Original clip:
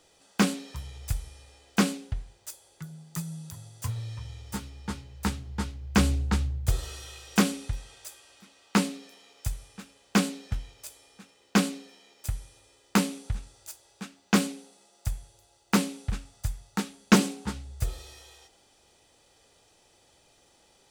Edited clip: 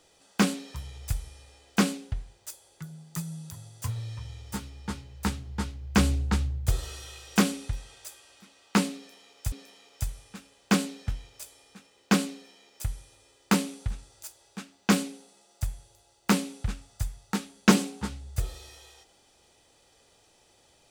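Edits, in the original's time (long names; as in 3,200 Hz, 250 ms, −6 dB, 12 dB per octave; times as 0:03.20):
0:08.96–0:09.52: repeat, 2 plays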